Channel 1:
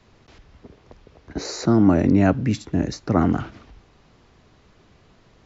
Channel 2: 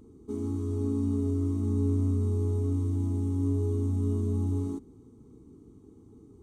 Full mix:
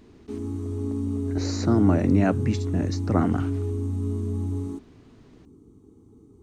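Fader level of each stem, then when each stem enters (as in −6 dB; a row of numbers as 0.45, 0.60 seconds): −4.0, +0.5 decibels; 0.00, 0.00 seconds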